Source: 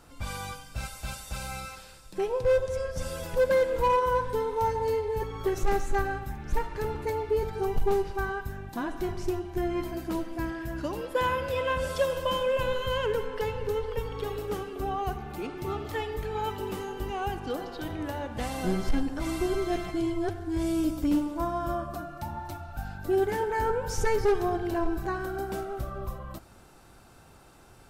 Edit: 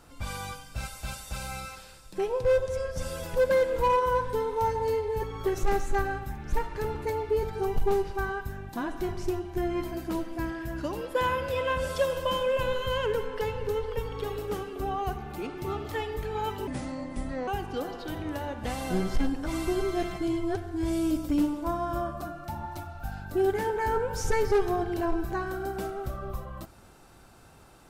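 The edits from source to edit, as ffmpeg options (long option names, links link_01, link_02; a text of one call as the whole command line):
ffmpeg -i in.wav -filter_complex "[0:a]asplit=3[link_01][link_02][link_03];[link_01]atrim=end=16.674[link_04];[link_02]atrim=start=16.67:end=17.21,asetpts=PTS-STARTPTS,asetrate=29547,aresample=44100,atrim=end_sample=35543,asetpts=PTS-STARTPTS[link_05];[link_03]atrim=start=17.206[link_06];[link_04][link_05]acrossfade=duration=0.004:curve1=hsin:curve2=hsin[link_07];[link_07][link_06]acrossfade=duration=0.004:curve1=hsin:curve2=hsin" out.wav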